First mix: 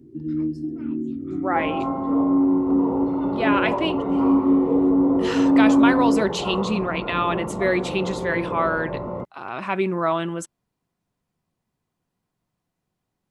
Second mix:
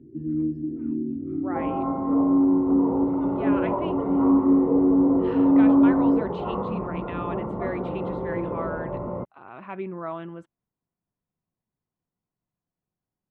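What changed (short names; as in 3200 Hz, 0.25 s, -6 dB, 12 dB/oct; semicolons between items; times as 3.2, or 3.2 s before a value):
speech -9.0 dB; master: add air absorption 500 m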